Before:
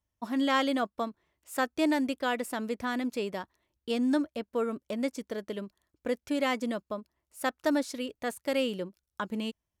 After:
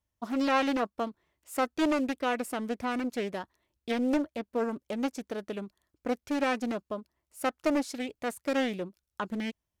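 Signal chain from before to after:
highs frequency-modulated by the lows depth 0.49 ms

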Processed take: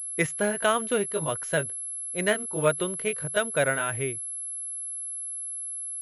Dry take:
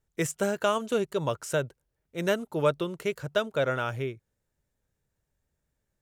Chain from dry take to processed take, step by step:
pitch shifter swept by a sawtooth +1 semitone, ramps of 786 ms
dynamic equaliser 2,000 Hz, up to +8 dB, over −48 dBFS, Q 1.7
switching amplifier with a slow clock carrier 11,000 Hz
level +1.5 dB

